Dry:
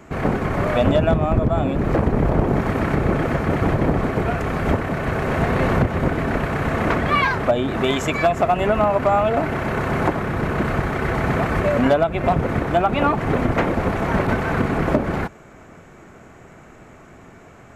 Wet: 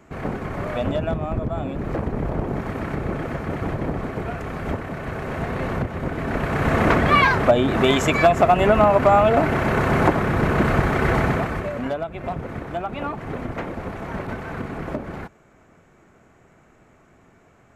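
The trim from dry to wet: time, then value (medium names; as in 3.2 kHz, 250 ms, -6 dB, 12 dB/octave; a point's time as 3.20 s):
6.04 s -7 dB
6.73 s +2.5 dB
11.17 s +2.5 dB
11.74 s -10 dB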